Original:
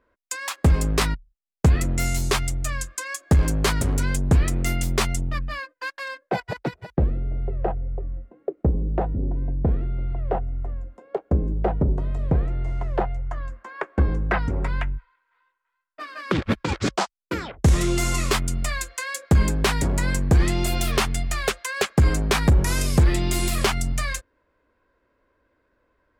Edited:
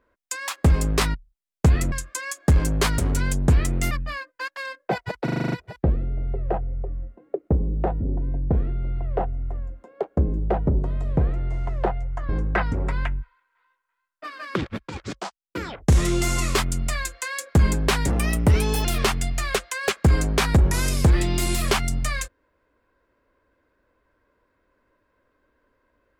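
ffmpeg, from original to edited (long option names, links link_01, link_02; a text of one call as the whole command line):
ffmpeg -i in.wav -filter_complex "[0:a]asplit=15[link_01][link_02][link_03][link_04][link_05][link_06][link_07][link_08][link_09][link_10][link_11][link_12][link_13][link_14][link_15];[link_01]atrim=end=1.922[link_16];[link_02]atrim=start=2.748:end=4.742[link_17];[link_03]atrim=start=5.328:end=6.702[link_18];[link_04]atrim=start=6.658:end=6.702[link_19];[link_05]atrim=start=6.658:end=6.702[link_20];[link_06]atrim=start=6.658:end=6.702[link_21];[link_07]atrim=start=6.658:end=6.702[link_22];[link_08]atrim=start=6.658:end=6.702[link_23];[link_09]atrim=start=6.658:end=6.702[link_24];[link_10]atrim=start=6.658:end=13.432[link_25];[link_11]atrim=start=14.048:end=16.48,asetpts=PTS-STARTPTS,afade=type=out:start_time=2.182:duration=0.25:silence=0.354813[link_26];[link_12]atrim=start=16.48:end=17.21,asetpts=PTS-STARTPTS,volume=-9dB[link_27];[link_13]atrim=start=17.21:end=19.864,asetpts=PTS-STARTPTS,afade=type=in:duration=0.25:silence=0.354813[link_28];[link_14]atrim=start=19.86:end=20.78,asetpts=PTS-STARTPTS,asetrate=54243,aresample=44100,atrim=end_sample=32985,asetpts=PTS-STARTPTS[link_29];[link_15]atrim=start=20.776[link_30];[link_16][link_17]acrossfade=duration=0.004:curve1=hsin:curve2=hsin[link_31];[link_31][link_18]acrossfade=duration=0.004:curve1=hsin:curve2=hsin[link_32];[link_32][link_19]acrossfade=duration=0.004:curve1=hsin:curve2=hsin[link_33];[link_33][link_20]acrossfade=duration=0.004:curve1=hsin:curve2=hsin[link_34];[link_34][link_21]acrossfade=duration=0.004:curve1=hsin:curve2=hsin[link_35];[link_35][link_22]acrossfade=duration=0.004:curve1=hsin:curve2=hsin[link_36];[link_36][link_23]acrossfade=duration=0.004:curve1=hsin:curve2=hsin[link_37];[link_37][link_24]acrossfade=duration=0.004:curve1=hsin:curve2=hsin[link_38];[link_38][link_25]acrossfade=duration=0.004:curve1=hsin:curve2=hsin[link_39];[link_26][link_27][link_28]concat=n=3:v=0:a=1[link_40];[link_39][link_40]acrossfade=duration=0.004:curve1=hsin:curve2=hsin[link_41];[link_41][link_29]acrossfade=duration=0.004:curve1=hsin:curve2=hsin[link_42];[link_42][link_30]acrossfade=duration=0.004:curve1=hsin:curve2=hsin" out.wav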